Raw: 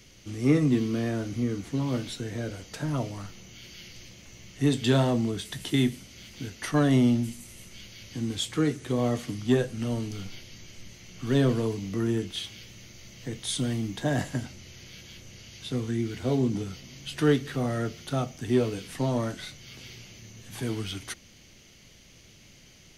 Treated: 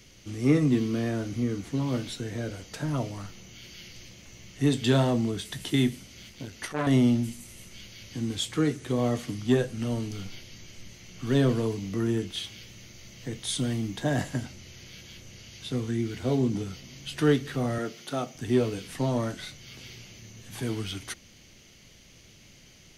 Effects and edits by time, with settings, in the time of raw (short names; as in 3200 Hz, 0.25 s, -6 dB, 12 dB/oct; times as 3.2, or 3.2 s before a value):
6.22–6.87 core saturation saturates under 1100 Hz
17.78–18.35 HPF 220 Hz